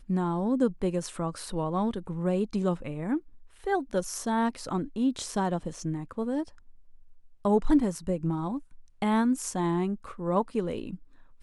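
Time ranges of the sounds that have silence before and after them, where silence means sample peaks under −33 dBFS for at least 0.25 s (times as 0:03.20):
0:03.67–0:06.43
0:07.45–0:08.58
0:09.02–0:10.95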